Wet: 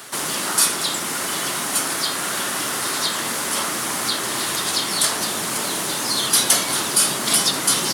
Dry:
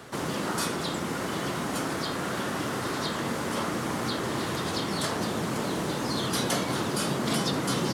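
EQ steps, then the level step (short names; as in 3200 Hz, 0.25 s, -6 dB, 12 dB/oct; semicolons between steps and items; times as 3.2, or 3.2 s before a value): tilt +3.5 dB/oct; bell 9800 Hz +4.5 dB 0.32 oct; notch 490 Hz, Q 12; +5.0 dB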